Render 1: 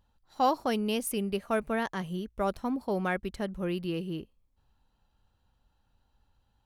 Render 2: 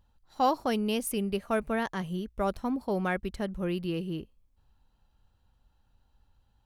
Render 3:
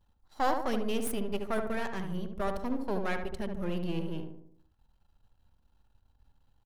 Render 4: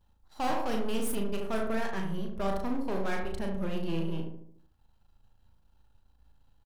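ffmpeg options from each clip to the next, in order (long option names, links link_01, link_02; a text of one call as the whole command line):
ffmpeg -i in.wav -af "lowshelf=frequency=110:gain=5" out.wav
ffmpeg -i in.wav -filter_complex "[0:a]aeval=exprs='if(lt(val(0),0),0.251*val(0),val(0))':channel_layout=same,asplit=2[link_01][link_02];[link_02]adelay=73,lowpass=frequency=1300:poles=1,volume=-4dB,asplit=2[link_03][link_04];[link_04]adelay=73,lowpass=frequency=1300:poles=1,volume=0.53,asplit=2[link_05][link_06];[link_06]adelay=73,lowpass=frequency=1300:poles=1,volume=0.53,asplit=2[link_07][link_08];[link_08]adelay=73,lowpass=frequency=1300:poles=1,volume=0.53,asplit=2[link_09][link_10];[link_10]adelay=73,lowpass=frequency=1300:poles=1,volume=0.53,asplit=2[link_11][link_12];[link_12]adelay=73,lowpass=frequency=1300:poles=1,volume=0.53,asplit=2[link_13][link_14];[link_14]adelay=73,lowpass=frequency=1300:poles=1,volume=0.53[link_15];[link_03][link_05][link_07][link_09][link_11][link_13][link_15]amix=inputs=7:normalize=0[link_16];[link_01][link_16]amix=inputs=2:normalize=0" out.wav
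ffmpeg -i in.wav -filter_complex "[0:a]asoftclip=type=hard:threshold=-27dB,asplit=2[link_01][link_02];[link_02]adelay=36,volume=-5dB[link_03];[link_01][link_03]amix=inputs=2:normalize=0,volume=1dB" out.wav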